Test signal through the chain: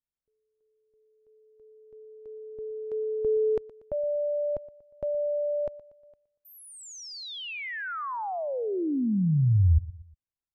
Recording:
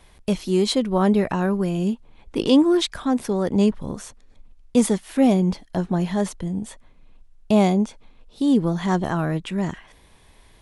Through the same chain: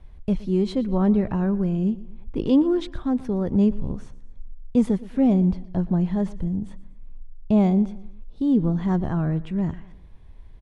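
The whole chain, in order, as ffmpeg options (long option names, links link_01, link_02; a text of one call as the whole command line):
ffmpeg -i in.wav -filter_complex "[0:a]aemphasis=mode=reproduction:type=riaa,asplit=2[link_01][link_02];[link_02]aecho=0:1:119|238|357:0.112|0.0494|0.0217[link_03];[link_01][link_03]amix=inputs=2:normalize=0,volume=-8dB" out.wav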